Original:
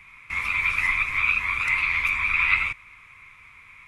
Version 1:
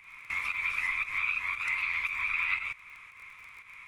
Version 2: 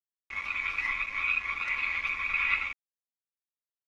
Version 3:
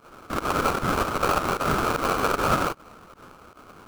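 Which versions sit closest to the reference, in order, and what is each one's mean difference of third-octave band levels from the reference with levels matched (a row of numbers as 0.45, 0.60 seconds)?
1, 2, 3; 3.5, 4.5, 13.5 decibels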